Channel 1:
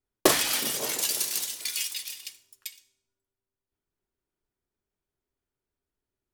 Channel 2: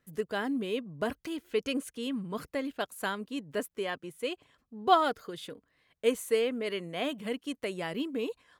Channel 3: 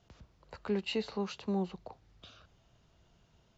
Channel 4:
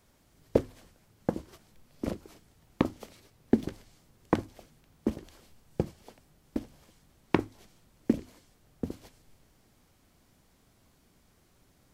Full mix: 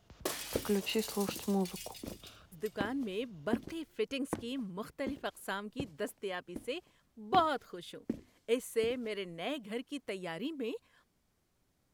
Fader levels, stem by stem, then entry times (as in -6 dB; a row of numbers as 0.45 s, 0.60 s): -16.5 dB, -5.0 dB, +0.5 dB, -11.5 dB; 0.00 s, 2.45 s, 0.00 s, 0.00 s